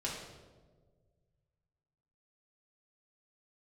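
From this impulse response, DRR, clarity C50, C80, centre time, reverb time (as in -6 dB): -6.0 dB, 2.5 dB, 5.0 dB, 59 ms, 1.5 s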